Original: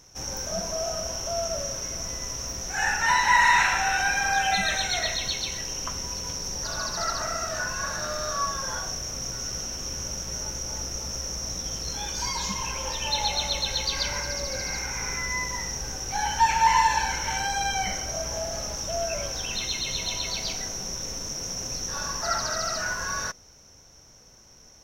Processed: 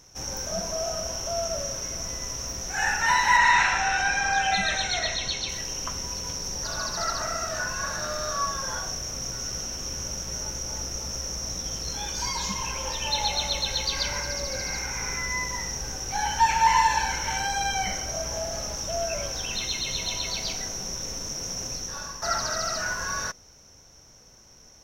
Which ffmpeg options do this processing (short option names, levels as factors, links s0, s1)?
-filter_complex "[0:a]asettb=1/sr,asplit=3[s0][s1][s2];[s0]atrim=end=3.374[s3];[s1]atrim=start=3.37:end=5.49,asetpts=PTS-STARTPTS,afade=t=in:d=0.004:c=qsin,afade=t=out:st=2.116:d=0.004:c=qsin,lowpass=7300[s4];[s2]atrim=start=5.486[s5];[s3][s4]acrossfade=d=0.004:c1=hsin:c2=qsin[s6];[s6][s5]acrossfade=d=0.004:c1=qsin:c2=hsin,asplit=2[s7][s8];[s7]atrim=end=22.22,asetpts=PTS-STARTPTS,afade=t=out:st=21.63:d=0.59:silence=0.375837[s9];[s8]atrim=start=22.22,asetpts=PTS-STARTPTS,afade=t=in:d=0.004:c=hsin:silence=0.375837[s10];[s9][s10]concat=n=2:v=0:a=1"